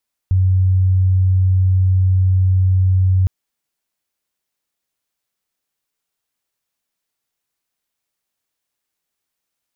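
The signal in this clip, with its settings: tone sine 93.4 Hz -10.5 dBFS 2.96 s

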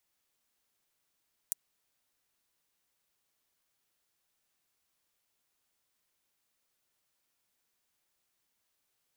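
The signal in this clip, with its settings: closed hi-hat, high-pass 7.8 kHz, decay 0.02 s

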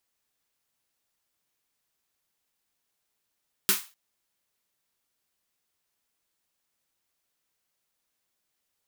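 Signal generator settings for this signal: snare drum length 0.25 s, tones 200 Hz, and 380 Hz, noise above 1 kHz, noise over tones 12 dB, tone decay 0.17 s, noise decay 0.31 s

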